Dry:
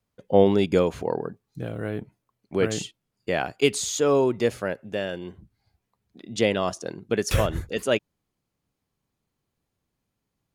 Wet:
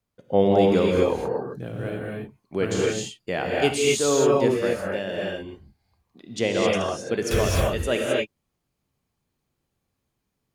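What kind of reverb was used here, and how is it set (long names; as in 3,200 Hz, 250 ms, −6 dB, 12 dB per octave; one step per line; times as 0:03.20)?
reverb whose tail is shaped and stops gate 290 ms rising, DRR −3 dB
level −2.5 dB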